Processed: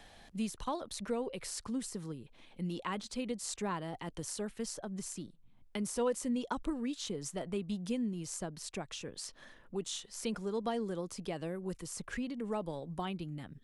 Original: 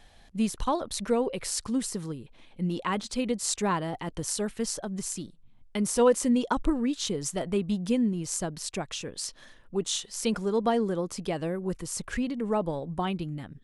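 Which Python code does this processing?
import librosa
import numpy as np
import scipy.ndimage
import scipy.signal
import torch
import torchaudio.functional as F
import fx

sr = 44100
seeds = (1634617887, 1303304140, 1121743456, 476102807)

y = fx.band_squash(x, sr, depth_pct=40)
y = y * librosa.db_to_amplitude(-9.0)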